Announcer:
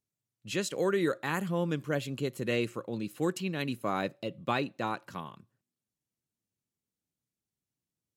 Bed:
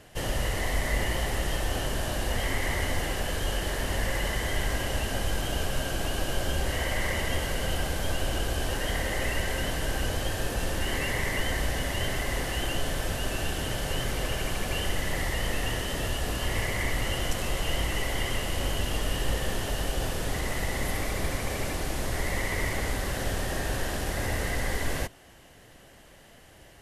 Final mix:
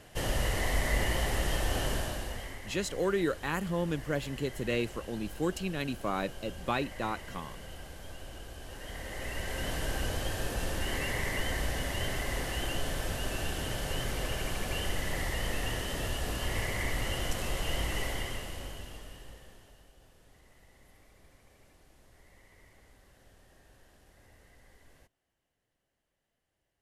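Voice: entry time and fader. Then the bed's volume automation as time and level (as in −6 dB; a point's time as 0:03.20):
2.20 s, −1.0 dB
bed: 0:01.93 −1.5 dB
0:02.63 −16.5 dB
0:08.61 −16.5 dB
0:09.74 −4 dB
0:18.05 −4 dB
0:19.93 −30.5 dB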